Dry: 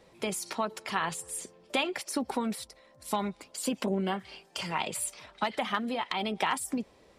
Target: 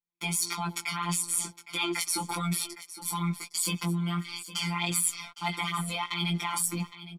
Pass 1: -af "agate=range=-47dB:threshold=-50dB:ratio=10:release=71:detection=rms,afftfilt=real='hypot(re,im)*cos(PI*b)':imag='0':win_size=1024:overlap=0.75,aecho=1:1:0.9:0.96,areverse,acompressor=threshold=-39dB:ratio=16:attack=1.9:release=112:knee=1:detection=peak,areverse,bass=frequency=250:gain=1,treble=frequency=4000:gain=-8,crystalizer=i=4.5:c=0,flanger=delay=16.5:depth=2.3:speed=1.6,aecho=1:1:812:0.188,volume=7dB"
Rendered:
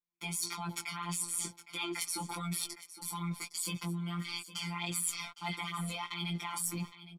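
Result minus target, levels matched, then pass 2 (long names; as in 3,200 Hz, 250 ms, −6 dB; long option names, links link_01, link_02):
downward compressor: peak gain reduction +7.5 dB
-af "agate=range=-47dB:threshold=-50dB:ratio=10:release=71:detection=rms,afftfilt=real='hypot(re,im)*cos(PI*b)':imag='0':win_size=1024:overlap=0.75,aecho=1:1:0.9:0.96,areverse,acompressor=threshold=-31dB:ratio=16:attack=1.9:release=112:knee=1:detection=peak,areverse,bass=frequency=250:gain=1,treble=frequency=4000:gain=-8,crystalizer=i=4.5:c=0,flanger=delay=16.5:depth=2.3:speed=1.6,aecho=1:1:812:0.188,volume=7dB"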